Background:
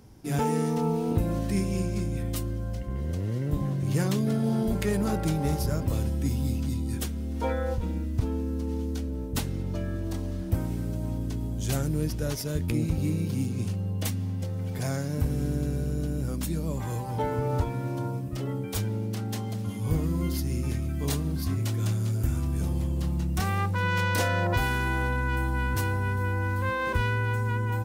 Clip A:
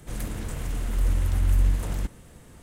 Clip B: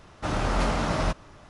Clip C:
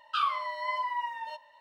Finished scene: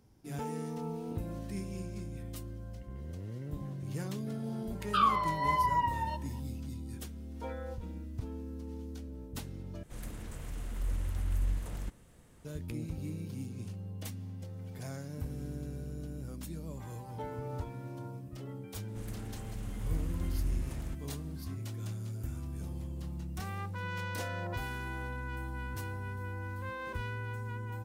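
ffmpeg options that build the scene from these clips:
ffmpeg -i bed.wav -i cue0.wav -i cue1.wav -i cue2.wav -filter_complex "[1:a]asplit=2[link_01][link_02];[0:a]volume=-12dB[link_03];[3:a]equalizer=frequency=970:width=1.5:gain=6.5[link_04];[link_03]asplit=2[link_05][link_06];[link_05]atrim=end=9.834[link_07];[link_01]atrim=end=2.62,asetpts=PTS-STARTPTS,volume=-10.5dB[link_08];[link_06]atrim=start=12.446[link_09];[link_04]atrim=end=1.6,asetpts=PTS-STARTPTS,volume=-3dB,afade=type=in:duration=0.004:curve=hsin,afade=type=out:start_time=1.596:duration=0.004:curve=hsin,adelay=4800[link_10];[link_02]atrim=end=2.62,asetpts=PTS-STARTPTS,volume=-12.5dB,afade=type=in:duration=0.004:curve=hsin,afade=type=out:start_time=2.616:duration=0.004:curve=hsin,adelay=18880[link_11];[link_07][link_08]acrossfade=duration=0.004:curve1=hsin:curve2=hsin[link_12];[link_12][link_09]acrossfade=duration=0.004:curve1=hsin:curve2=hsin[link_13];[link_13][link_10][link_11]amix=inputs=3:normalize=0" out.wav

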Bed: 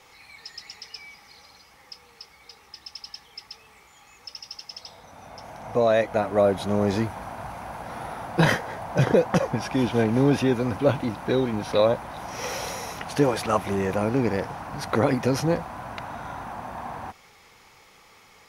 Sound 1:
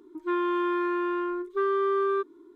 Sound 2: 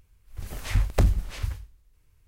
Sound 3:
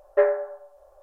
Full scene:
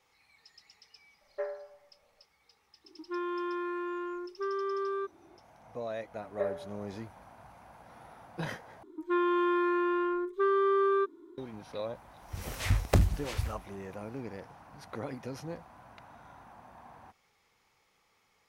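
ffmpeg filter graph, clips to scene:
ffmpeg -i bed.wav -i cue0.wav -i cue1.wav -i cue2.wav -filter_complex "[3:a]asplit=2[link_01][link_02];[1:a]asplit=2[link_03][link_04];[0:a]volume=-17.5dB[link_05];[link_01]equalizer=frequency=460:width_type=o:width=0.24:gain=-6[link_06];[2:a]highpass=63[link_07];[link_05]asplit=2[link_08][link_09];[link_08]atrim=end=8.834[link_10];[link_04]atrim=end=2.55,asetpts=PTS-STARTPTS,volume=-1dB[link_11];[link_09]atrim=start=11.376[link_12];[link_06]atrim=end=1.02,asetpts=PTS-STARTPTS,volume=-16dB,afade=type=in:duration=0.004:curve=hsin,afade=type=out:start_time=1.016:duration=0.004:curve=hsin,adelay=1210[link_13];[link_03]atrim=end=2.55,asetpts=PTS-STARTPTS,volume=-8dB,afade=type=in:duration=0.004:curve=hsin,afade=type=out:start_time=2.546:duration=0.004:curve=hsin,adelay=2840[link_14];[link_02]atrim=end=1.02,asetpts=PTS-STARTPTS,volume=-15.5dB,afade=type=in:duration=0.004:curve=hsin,afade=type=out:start_time=1.016:duration=0.004:curve=hsin,adelay=6220[link_15];[link_07]atrim=end=2.27,asetpts=PTS-STARTPTS,volume=-0.5dB,afade=type=in:duration=0.004:curve=hsin,afade=type=out:start_time=2.266:duration=0.004:curve=hsin,adelay=11950[link_16];[link_10][link_11]acrossfade=duration=0.004:curve1=hsin:curve2=hsin[link_17];[link_17][link_12]acrossfade=duration=0.004:curve1=hsin:curve2=hsin[link_18];[link_18][link_13][link_14][link_15][link_16]amix=inputs=5:normalize=0" out.wav

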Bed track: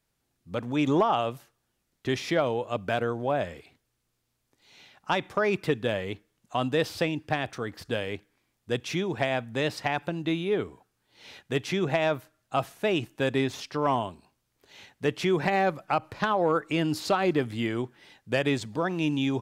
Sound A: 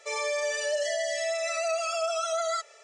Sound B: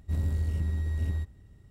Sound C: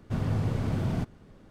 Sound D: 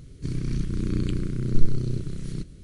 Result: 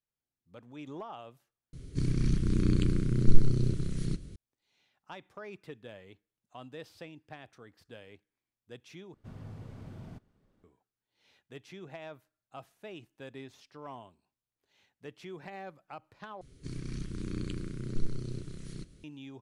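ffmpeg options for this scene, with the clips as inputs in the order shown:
ffmpeg -i bed.wav -i cue0.wav -i cue1.wav -i cue2.wav -i cue3.wav -filter_complex "[4:a]asplit=2[link_01][link_02];[0:a]volume=-19.5dB[link_03];[link_02]lowshelf=frequency=290:gain=-7[link_04];[link_03]asplit=4[link_05][link_06][link_07][link_08];[link_05]atrim=end=1.734[link_09];[link_01]atrim=end=2.63,asetpts=PTS-STARTPTS,volume=-0.5dB[link_10];[link_06]atrim=start=4.356:end=9.144[link_11];[3:a]atrim=end=1.5,asetpts=PTS-STARTPTS,volume=-17.5dB[link_12];[link_07]atrim=start=10.636:end=16.414[link_13];[link_04]atrim=end=2.63,asetpts=PTS-STARTPTS,volume=-5.5dB[link_14];[link_08]atrim=start=19.036[link_15];[link_09][link_10]acrossfade=duration=0.004:curve1=hsin:curve2=hsin[link_16];[link_16][link_11]acrossfade=duration=0.004:curve1=hsin:curve2=hsin[link_17];[link_17][link_12]acrossfade=duration=0.004:curve1=hsin:curve2=hsin[link_18];[link_18][link_13]acrossfade=duration=0.004:curve1=hsin:curve2=hsin[link_19];[link_19][link_14]acrossfade=duration=0.004:curve1=hsin:curve2=hsin[link_20];[link_20][link_15]acrossfade=duration=0.004:curve1=hsin:curve2=hsin" out.wav

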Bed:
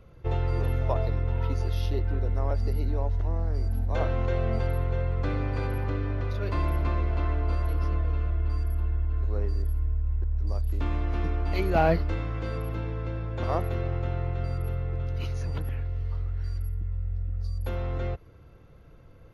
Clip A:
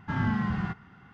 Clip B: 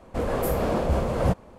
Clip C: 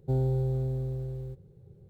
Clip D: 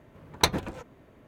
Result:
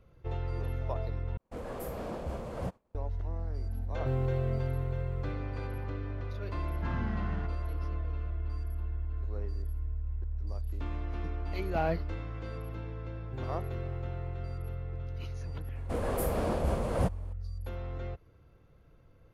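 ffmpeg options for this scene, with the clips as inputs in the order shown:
ffmpeg -i bed.wav -i cue0.wav -i cue1.wav -i cue2.wav -filter_complex "[2:a]asplit=2[link_01][link_02];[3:a]asplit=2[link_03][link_04];[0:a]volume=-8dB[link_05];[link_01]agate=range=-33dB:threshold=-39dB:ratio=3:release=100:detection=peak[link_06];[link_02]equalizer=frequency=9700:width=4.1:gain=8[link_07];[link_05]asplit=2[link_08][link_09];[link_08]atrim=end=1.374[link_10];[link_06]atrim=end=1.58,asetpts=PTS-STARTPTS,volume=-13.5dB[link_11];[link_09]atrim=start=2.946[link_12];[link_03]atrim=end=1.89,asetpts=PTS-STARTPTS,volume=-6.5dB,afade=type=in:duration=0.004:curve=hsin,afade=type=out:start_time=1.886:duration=0.004:curve=hsin,adelay=175077S[link_13];[1:a]atrim=end=1.13,asetpts=PTS-STARTPTS,volume=-9.5dB,afade=type=in:duration=0.004:curve=hsin,afade=type=out:start_time=1.126:duration=0.004:curve=hsin,adelay=297234S[link_14];[link_04]atrim=end=1.89,asetpts=PTS-STARTPTS,volume=-16.5dB,afade=type=in:duration=0.004:curve=hsin,afade=type=out:start_time=1.886:duration=0.004:curve=hsin,adelay=13240[link_15];[link_07]atrim=end=1.58,asetpts=PTS-STARTPTS,volume=-6.5dB,afade=type=in:duration=0.004:curve=hsin,afade=type=out:start_time=1.576:duration=0.004:curve=hsin,adelay=15750[link_16];[link_10][link_11]acrossfade=duration=0.004:curve1=hsin:curve2=hsin[link_17];[link_17][link_12]acrossfade=duration=0.004:curve1=hsin:curve2=hsin[link_18];[link_18][link_13][link_14][link_15][link_16]amix=inputs=5:normalize=0" out.wav

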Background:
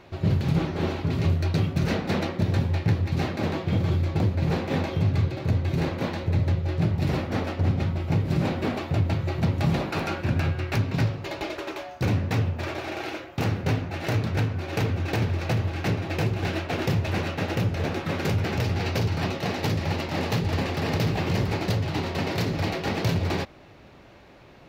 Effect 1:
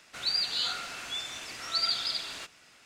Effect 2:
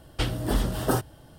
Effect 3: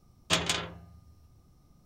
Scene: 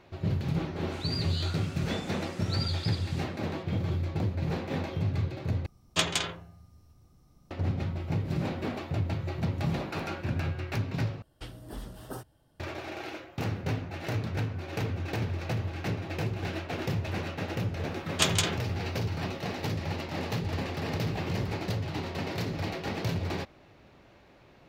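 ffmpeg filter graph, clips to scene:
ffmpeg -i bed.wav -i cue0.wav -i cue1.wav -i cue2.wav -filter_complex "[3:a]asplit=2[link_01][link_02];[0:a]volume=-6.5dB[link_03];[link_02]highshelf=frequency=8800:gain=10[link_04];[link_03]asplit=3[link_05][link_06][link_07];[link_05]atrim=end=5.664[link_08];[link_01]atrim=end=1.85[link_09];[link_06]atrim=start=7.506:end=11.224[link_10];[2:a]atrim=end=1.38,asetpts=PTS-STARTPTS,volume=-16dB[link_11];[link_07]atrim=start=12.596[link_12];[1:a]atrim=end=2.85,asetpts=PTS-STARTPTS,volume=-8dB,afade=type=in:duration=0.004:curve=hsin,afade=type=out:start_time=2.846:duration=0.004:curve=hsin,adelay=780[link_13];[link_04]atrim=end=1.85,asetpts=PTS-STARTPTS,afade=type=in:duration=0.004:curve=hsin,afade=type=out:start_time=1.846:duration=0.004:curve=hsin,adelay=17890[link_14];[link_08][link_09]acrossfade=duration=0.004:curve1=hsin:curve2=hsin[link_15];[link_15][link_10]acrossfade=duration=0.004:curve1=hsin:curve2=hsin[link_16];[link_16][link_11]acrossfade=duration=0.004:curve1=hsin:curve2=hsin[link_17];[link_17][link_12]acrossfade=duration=0.004:curve1=hsin:curve2=hsin[link_18];[link_18][link_13][link_14]amix=inputs=3:normalize=0" out.wav

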